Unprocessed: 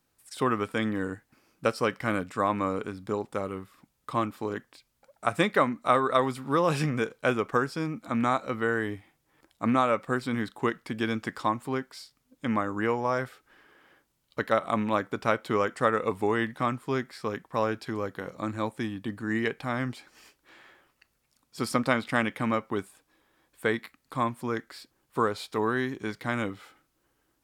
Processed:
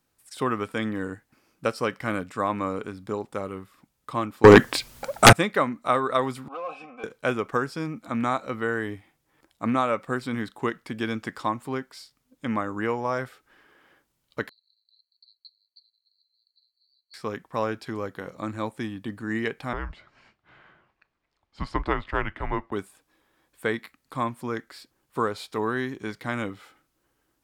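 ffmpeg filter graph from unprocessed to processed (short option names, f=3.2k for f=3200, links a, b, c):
-filter_complex "[0:a]asettb=1/sr,asplit=3[a][b][c];[a]atrim=end=4.444[d];[b]atrim=start=4.44:end=5.33,asetpts=PTS-STARTPTS,afade=t=in:d=0.004:c=qsin,afade=t=out:st=0.886:d=0.004:c=qsin,acontrast=63,aeval=exprs='0.668*sin(PI/2*6.31*val(0)/0.668)':c=same[e];[c]atrim=start=5.326[f];[d][e]acrossfade=d=0.004:c1=hsin:c2=qsin[g];[g][f]acrossfade=d=0.004:c1=qsin:c2=hsin,asettb=1/sr,asplit=3[h][i][j];[h]atrim=end=6.484[k];[i]atrim=start=6.48:end=7.04,asetpts=PTS-STARTPTS,afade=t=in:d=0.004:c=qsin,afade=t=out:st=0.556:d=0.004:c=qsin,aecho=1:1:3.9:0.96,atrim=end_sample=24696,asoftclip=type=hard:threshold=-18dB,asplit=3[l][m][n];[l]bandpass=f=730:t=q:w=8,volume=0dB[o];[m]bandpass=f=1.09k:t=q:w=8,volume=-6dB[p];[n]bandpass=f=2.44k:t=q:w=8,volume=-9dB[q];[o][p][q]amix=inputs=3:normalize=0[r];[j]atrim=start=7.036[s];[k][r]acrossfade=d=0.004:c1=hsin:c2=qsin[t];[t][s]acrossfade=d=0.004:c1=qsin:c2=hsin,asettb=1/sr,asplit=3[u][v][w];[u]atrim=end=14.494[x];[v]atrim=start=14.49:end=17.14,asetpts=PTS-STARTPTS,afade=t=in:d=0.004:c=qsin,afade=t=out:st=2.646:d=0.004:c=qsin,acontrast=27,asuperpass=centerf=4300:order=12:qfactor=7.8[y];[w]atrim=start=17.136[z];[x][y]acrossfade=d=0.004:c1=hsin:c2=qsin[aa];[aa][z]acrossfade=d=0.004:c1=qsin:c2=hsin,asettb=1/sr,asplit=3[ab][ac][ad];[ab]atrim=end=19.734[ae];[ac]atrim=start=19.73:end=22.72,asetpts=PTS-STARTPTS,afade=t=in:d=0.004:c=qsin,afade=t=out:st=2.986:d=0.004:c=qsin,highpass=200,lowpass=2.9k,afreqshift=-200[af];[ad]atrim=start=22.716[ag];[ae][af]acrossfade=d=0.004:c1=hsin:c2=qsin[ah];[ah][ag]acrossfade=d=0.004:c1=qsin:c2=hsin"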